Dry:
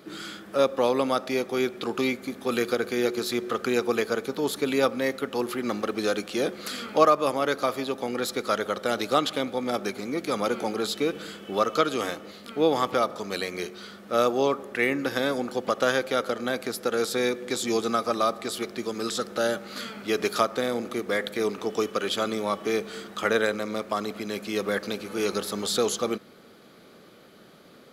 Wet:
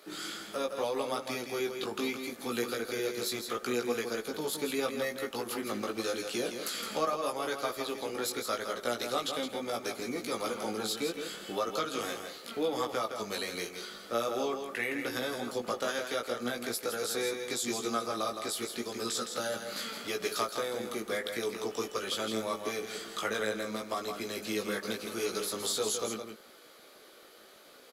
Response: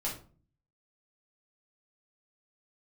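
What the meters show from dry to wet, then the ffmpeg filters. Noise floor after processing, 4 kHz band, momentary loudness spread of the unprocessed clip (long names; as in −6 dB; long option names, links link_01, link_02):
−55 dBFS, −3.5 dB, 7 LU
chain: -filter_complex "[0:a]equalizer=frequency=12000:width_type=o:width=2.1:gain=8,acompressor=threshold=-31dB:ratio=2,flanger=delay=16.5:depth=2.3:speed=0.79,acrossover=split=330|1600[link_01][link_02][link_03];[link_01]aeval=exprs='sgn(val(0))*max(abs(val(0))-0.0015,0)':channel_layout=same[link_04];[link_04][link_02][link_03]amix=inputs=3:normalize=0,aecho=1:1:164:0.447"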